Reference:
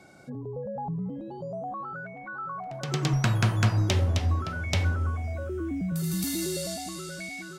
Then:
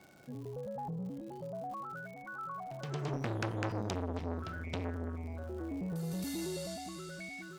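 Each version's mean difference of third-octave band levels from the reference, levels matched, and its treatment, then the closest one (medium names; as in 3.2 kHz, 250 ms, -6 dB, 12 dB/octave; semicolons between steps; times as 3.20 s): 5.5 dB: treble shelf 5.2 kHz -7.5 dB; crackle 160 per s -41 dBFS; transformer saturation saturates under 940 Hz; trim -6 dB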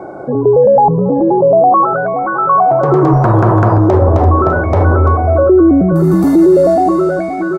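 8.5 dB: FFT filter 240 Hz 0 dB, 340 Hz +13 dB, 1.1 kHz +10 dB, 2.8 kHz -22 dB; delay 340 ms -16.5 dB; loudness maximiser +18.5 dB; trim -1 dB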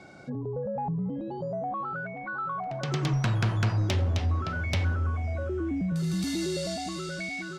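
3.0 dB: low-pass 5.5 kHz 12 dB/octave; in parallel at 0 dB: compression, threshold -33 dBFS, peak gain reduction 14.5 dB; on the sum: saturation -17 dBFS, distortion -18 dB; trim -2 dB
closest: third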